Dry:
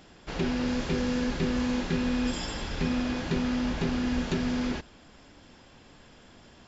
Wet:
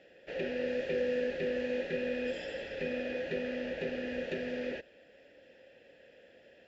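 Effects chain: vowel filter e; bass shelf 99 Hz +8 dB; trim +7.5 dB

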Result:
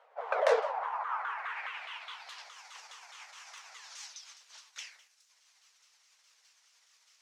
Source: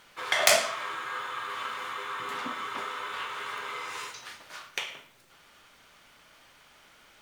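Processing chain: sawtooth pitch modulation -9 st, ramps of 208 ms; elliptic high-pass 460 Hz, stop band 40 dB; band-pass sweep 630 Hz -> 6 kHz, 0.57–2.54 s; trim +5.5 dB

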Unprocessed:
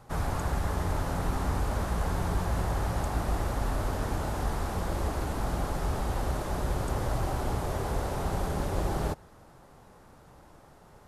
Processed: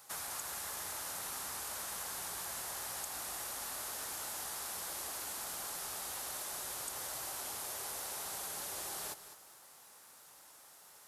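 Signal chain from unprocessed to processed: differentiator; compression 3:1, threshold -51 dBFS, peak gain reduction 7.5 dB; bit-crushed delay 207 ms, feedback 35%, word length 12-bit, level -12 dB; trim +10.5 dB

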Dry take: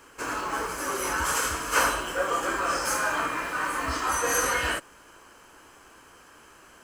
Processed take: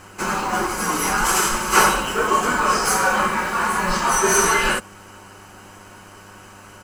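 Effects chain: frequency shift -90 Hz; comb 5.4 ms, depth 38%; mains buzz 100 Hz, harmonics 20, -56 dBFS -4 dB/octave; trim +7.5 dB

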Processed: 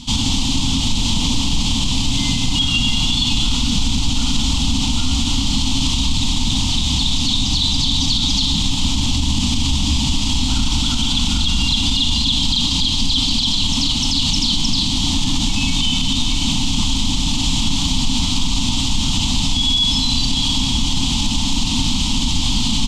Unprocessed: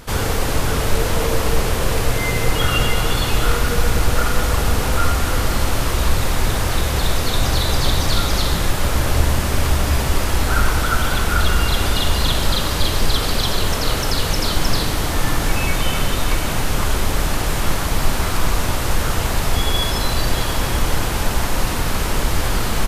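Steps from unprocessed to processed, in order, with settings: FFT filter 130 Hz 0 dB, 270 Hz +11 dB, 400 Hz -24 dB, 600 Hz -19 dB, 900 Hz -1 dB, 1.6 kHz -23 dB, 3.2 kHz +13 dB, 5.1 kHz +7 dB, 7.4 kHz +6 dB, 12 kHz -19 dB; peak limiter -10 dBFS, peak gain reduction 10.5 dB; trim +2 dB

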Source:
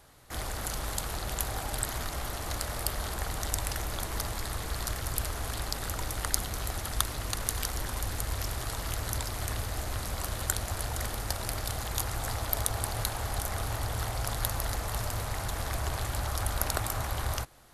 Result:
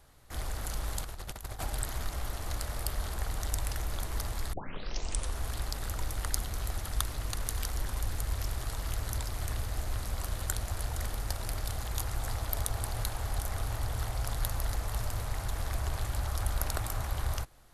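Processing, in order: bass shelf 66 Hz +11 dB; 1.03–1.65 s: compressor with a negative ratio -33 dBFS, ratio -0.5; 4.53 s: tape start 0.86 s; trim -5 dB

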